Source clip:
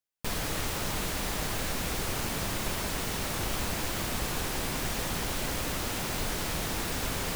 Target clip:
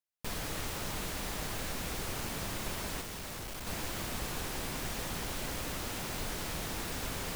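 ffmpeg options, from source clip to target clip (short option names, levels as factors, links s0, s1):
-filter_complex "[0:a]asettb=1/sr,asplit=3[s0][s1][s2];[s0]atrim=end=3.014[s3];[s1]atrim=start=3.01:end=3.67,asetpts=PTS-STARTPTS,afade=t=in:d=0.004:c=qsin,afade=t=out:st=0.656:d=0.004:c=qsin,asoftclip=type=hard:threshold=0.02[s4];[s2]atrim=start=3.666[s5];[s3][s4]acrossfade=d=0.004:c1=hsin:c2=qsin[s6];[s6][s5]acrossfade=d=0.004:c1=qsin:c2=hsin,volume=0.531"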